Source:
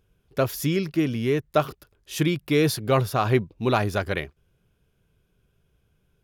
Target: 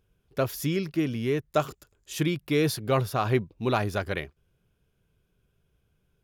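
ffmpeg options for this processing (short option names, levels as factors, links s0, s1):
-filter_complex "[0:a]asettb=1/sr,asplit=3[s0][s1][s2];[s0]atrim=end=1.544[s3];[s1]atrim=start=1.54:end=2.13,asetpts=PTS-STARTPTS,afade=t=in:d=0.004:c=qsin,afade=t=out:st=0.586:d=0.004:c=qsin,equalizer=f=7200:t=o:w=0.33:g=14[s4];[s2]atrim=start=2.126[s5];[s3][s4]acrossfade=d=0.004:c1=hsin:c2=qsin[s6];[s6][s5]acrossfade=d=0.004:c1=qsin:c2=hsin,volume=0.668"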